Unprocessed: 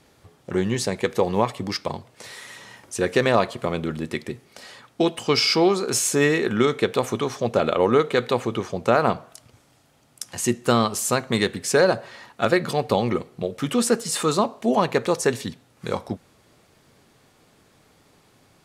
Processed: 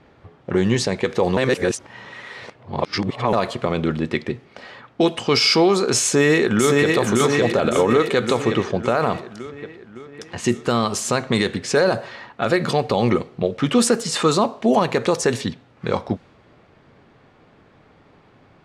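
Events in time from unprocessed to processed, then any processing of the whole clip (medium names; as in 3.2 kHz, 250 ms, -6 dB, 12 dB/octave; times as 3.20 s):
1.37–3.33 s: reverse
6.03–6.96 s: echo throw 560 ms, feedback 60%, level -3 dB
whole clip: level-controlled noise filter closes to 2.3 kHz, open at -14.5 dBFS; loudness maximiser +12 dB; trim -6 dB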